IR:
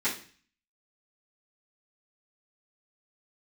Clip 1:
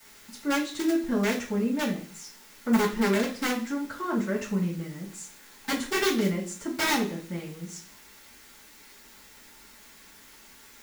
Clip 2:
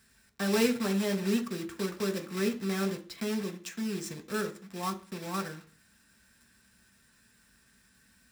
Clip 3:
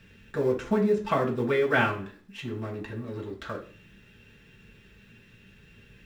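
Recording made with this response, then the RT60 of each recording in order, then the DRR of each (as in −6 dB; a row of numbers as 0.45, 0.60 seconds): 1; 0.40, 0.40, 0.40 seconds; −13.5, 4.5, −3.5 decibels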